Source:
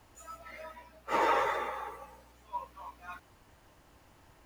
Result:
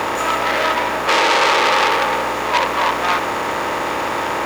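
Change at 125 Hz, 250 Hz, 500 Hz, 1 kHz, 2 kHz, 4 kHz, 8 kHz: +21.5 dB, +21.0 dB, +18.5 dB, +18.5 dB, +22.5 dB, +28.5 dB, +25.5 dB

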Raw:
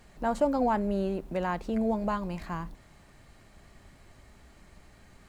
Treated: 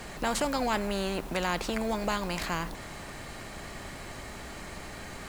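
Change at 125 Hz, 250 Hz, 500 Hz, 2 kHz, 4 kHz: -0.5 dB, -3.0 dB, -2.0 dB, +7.5 dB, +14.5 dB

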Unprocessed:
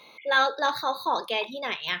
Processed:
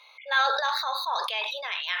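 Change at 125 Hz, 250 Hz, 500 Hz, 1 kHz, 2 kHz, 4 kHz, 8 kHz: no reading, under -25 dB, -6.0 dB, -1.0 dB, -0.5 dB, +1.5 dB, +0.5 dB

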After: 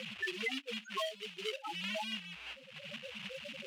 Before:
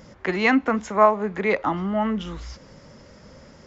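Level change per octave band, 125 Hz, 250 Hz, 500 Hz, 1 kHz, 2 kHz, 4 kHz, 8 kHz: -21.0 dB, -23.0 dB, -20.0 dB, -22.0 dB, -12.5 dB, +0.5 dB, no reading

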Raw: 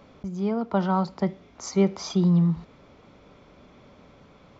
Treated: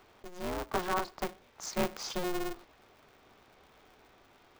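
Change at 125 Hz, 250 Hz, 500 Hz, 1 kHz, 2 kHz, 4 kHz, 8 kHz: -22.5 dB, -16.0 dB, -8.0 dB, -4.5 dB, +2.0 dB, -1.5 dB, no reading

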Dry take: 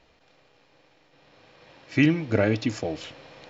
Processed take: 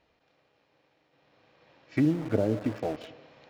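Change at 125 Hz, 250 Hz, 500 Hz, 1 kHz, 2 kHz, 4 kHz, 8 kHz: -4.5 dB, -3.5 dB, -3.0 dB, -3.0 dB, -13.5 dB, -12.5 dB, no reading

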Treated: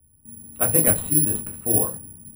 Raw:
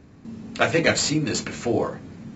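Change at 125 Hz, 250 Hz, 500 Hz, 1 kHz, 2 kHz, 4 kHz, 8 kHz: +1.0 dB, -3.0 dB, -4.5 dB, -6.0 dB, -12.5 dB, -19.5 dB, no reading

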